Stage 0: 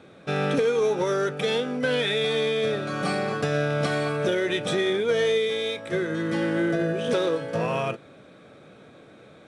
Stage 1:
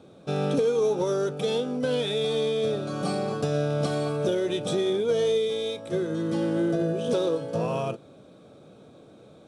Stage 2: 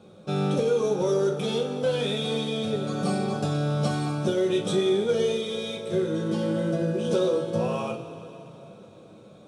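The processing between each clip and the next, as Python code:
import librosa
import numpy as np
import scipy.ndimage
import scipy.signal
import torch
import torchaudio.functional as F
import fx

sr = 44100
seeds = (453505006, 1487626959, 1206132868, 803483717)

y1 = fx.peak_eq(x, sr, hz=1900.0, db=-15.0, octaves=1.0)
y2 = fx.rev_double_slope(y1, sr, seeds[0], early_s=0.22, late_s=3.4, knee_db=-18, drr_db=0.0)
y2 = y2 * 10.0 ** (-2.0 / 20.0)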